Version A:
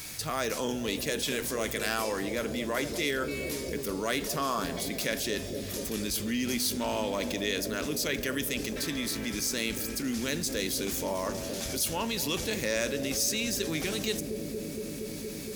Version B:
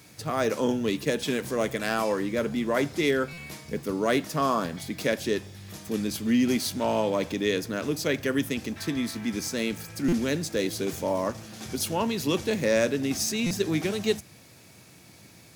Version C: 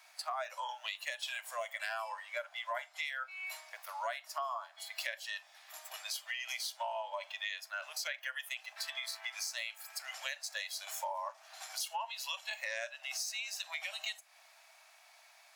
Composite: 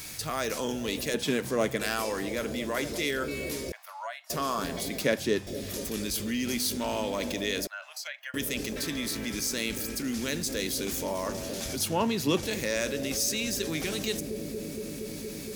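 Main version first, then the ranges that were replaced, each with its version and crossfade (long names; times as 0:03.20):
A
0:01.14–0:01.81: punch in from B
0:03.72–0:04.30: punch in from C
0:05.01–0:05.47: punch in from B
0:07.67–0:08.34: punch in from C
0:11.76–0:12.43: punch in from B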